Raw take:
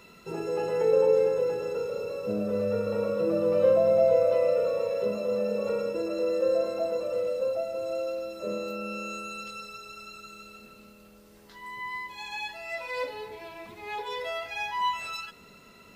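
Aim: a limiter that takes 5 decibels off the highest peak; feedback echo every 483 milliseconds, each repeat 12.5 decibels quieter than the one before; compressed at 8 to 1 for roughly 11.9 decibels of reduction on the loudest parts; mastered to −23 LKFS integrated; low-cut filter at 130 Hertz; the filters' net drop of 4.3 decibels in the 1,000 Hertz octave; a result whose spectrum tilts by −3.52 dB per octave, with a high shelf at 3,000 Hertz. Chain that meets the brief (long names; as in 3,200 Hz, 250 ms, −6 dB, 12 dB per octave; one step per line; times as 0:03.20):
high-pass filter 130 Hz
parametric band 1,000 Hz −6 dB
high-shelf EQ 3,000 Hz +3.5 dB
downward compressor 8 to 1, threshold −31 dBFS
brickwall limiter −28 dBFS
repeating echo 483 ms, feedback 24%, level −12.5 dB
level +13.5 dB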